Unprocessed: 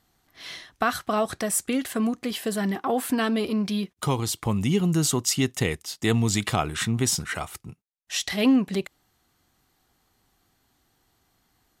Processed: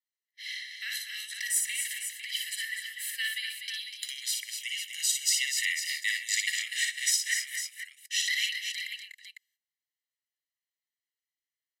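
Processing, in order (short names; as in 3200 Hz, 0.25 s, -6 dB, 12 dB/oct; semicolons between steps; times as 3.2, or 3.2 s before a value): tilt -2.5 dB/oct; gate -51 dBFS, range -25 dB; steep high-pass 1700 Hz 96 dB/oct; high shelf 8400 Hz +5 dB; comb 1 ms, depth 88%; on a send: tapped delay 58/128/190/246/273/502 ms -4/-18/-19/-7.5/-12/-9 dB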